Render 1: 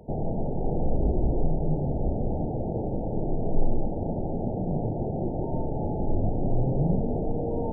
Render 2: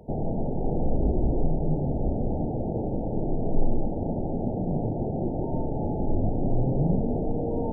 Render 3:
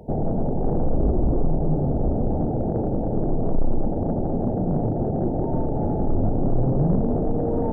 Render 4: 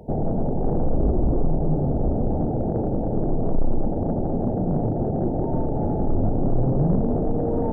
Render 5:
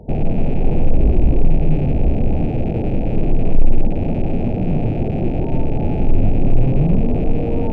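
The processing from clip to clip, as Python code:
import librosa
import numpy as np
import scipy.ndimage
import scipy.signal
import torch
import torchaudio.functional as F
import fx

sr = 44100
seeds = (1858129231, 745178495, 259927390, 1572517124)

y1 = fx.dynamic_eq(x, sr, hz=260.0, q=2.4, threshold_db=-43.0, ratio=4.0, max_db=3)
y2 = 10.0 ** (-17.5 / 20.0) * np.tanh(y1 / 10.0 ** (-17.5 / 20.0))
y2 = y2 * 10.0 ** (5.5 / 20.0)
y3 = y2
y4 = fx.rattle_buzz(y3, sr, strikes_db=-30.0, level_db=-28.0)
y4 = fx.tilt_eq(y4, sr, slope=-2.0)
y4 = y4 * 10.0 ** (-1.0 / 20.0)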